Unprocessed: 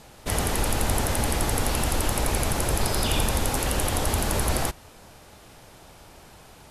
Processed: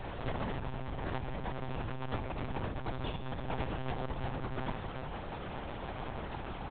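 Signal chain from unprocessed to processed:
low-pass filter 1,900 Hz 6 dB per octave
comb filter 2.3 ms, depth 64%
compressor whose output falls as the input rises −33 dBFS, ratio −1
one-pitch LPC vocoder at 8 kHz 130 Hz
level −3.5 dB

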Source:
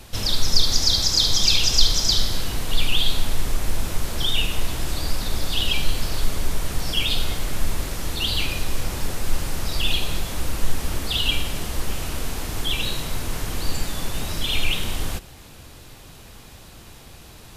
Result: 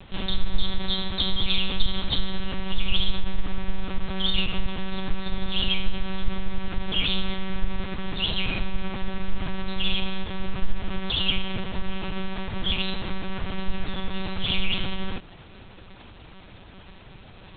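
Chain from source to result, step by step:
one-pitch LPC vocoder at 8 kHz 190 Hz
level −1.5 dB

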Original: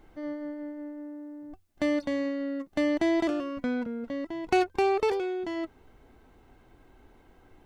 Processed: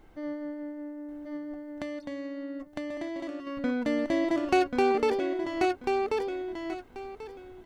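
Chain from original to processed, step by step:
repeating echo 1,087 ms, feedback 22%, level −3 dB
0:01.36–0:03.47: downward compressor 4 to 1, threshold −35 dBFS, peak gain reduction 12.5 dB

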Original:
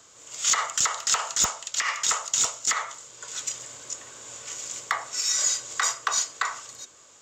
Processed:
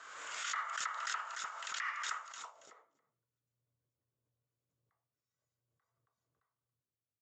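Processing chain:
in parallel at +3 dB: downward compressor, threshold −40 dBFS, peak gain reduction 20.5 dB
on the sum: low-pass filter sweep 1,500 Hz → 110 Hz, 0:02.32–0:03.26
first difference
single-tap delay 278 ms −21 dB
background raised ahead of every attack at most 32 dB per second
level −4 dB

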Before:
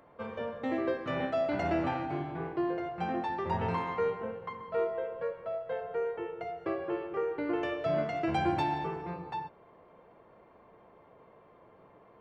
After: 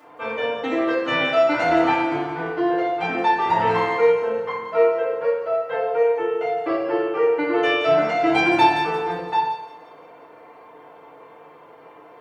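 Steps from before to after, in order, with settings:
high-pass filter 730 Hz 6 dB per octave
delay with a high-pass on its return 173 ms, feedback 51%, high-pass 5,100 Hz, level −5.5 dB
feedback delay network reverb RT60 0.64 s, low-frequency decay 1×, high-frequency decay 0.8×, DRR −10 dB
level +5.5 dB

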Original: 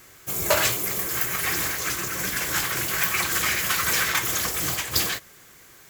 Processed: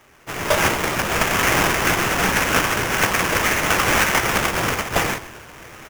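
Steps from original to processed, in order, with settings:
echo with shifted repeats 129 ms, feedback 59%, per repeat −70 Hz, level −19 dB
on a send at −18.5 dB: convolution reverb RT60 3.3 s, pre-delay 75 ms
on the sum: sample-rate reduction 4,200 Hz, jitter 20%
automatic gain control gain up to 13 dB
level −3 dB

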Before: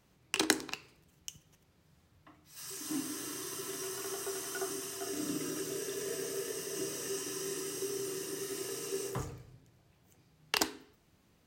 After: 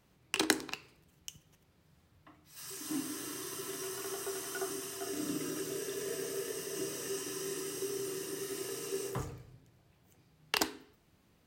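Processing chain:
parametric band 6,400 Hz −2.5 dB

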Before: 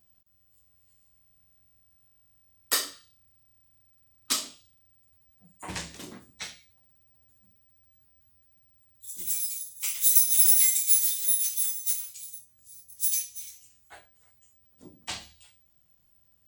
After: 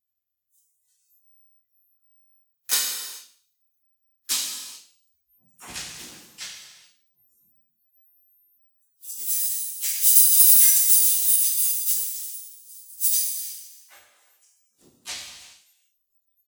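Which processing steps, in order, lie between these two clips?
pitch-shifted copies added −4 semitones −2 dB, +3 semitones −17 dB, +5 semitones −5 dB
parametric band 16,000 Hz +13 dB 2.8 octaves
reverb whose tail is shaped and stops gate 450 ms falling, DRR 1.5 dB
noise reduction from a noise print of the clip's start 21 dB
on a send: delay with a high-pass on its return 75 ms, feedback 44%, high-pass 3,000 Hz, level −16.5 dB
on the sum: level −12 dB

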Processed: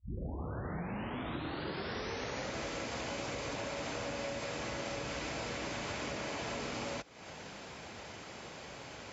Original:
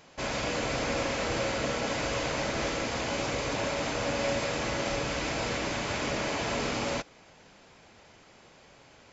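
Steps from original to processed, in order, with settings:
turntable start at the beginning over 2.57 s
high-pass filter 46 Hz 24 dB per octave
downward compressor 8 to 1, threshold −45 dBFS, peak gain reduction 19 dB
level +8 dB

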